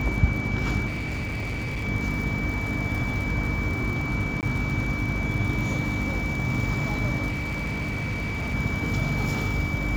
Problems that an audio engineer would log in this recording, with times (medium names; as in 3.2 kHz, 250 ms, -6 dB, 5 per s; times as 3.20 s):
crackle 65 per s -31 dBFS
hum 50 Hz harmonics 6 -31 dBFS
whine 2.3 kHz -31 dBFS
0.86–1.85 s: clipped -26.5 dBFS
4.41–4.43 s: dropout 18 ms
7.28–8.55 s: clipped -24.5 dBFS